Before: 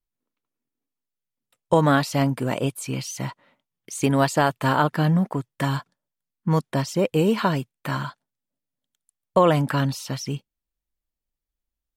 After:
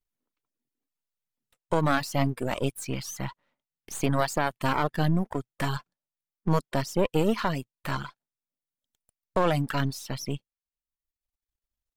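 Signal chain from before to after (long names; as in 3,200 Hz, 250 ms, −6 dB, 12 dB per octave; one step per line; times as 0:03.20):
gain on one half-wave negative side −12 dB
reverb reduction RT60 0.88 s
brickwall limiter −11.5 dBFS, peak gain reduction 6 dB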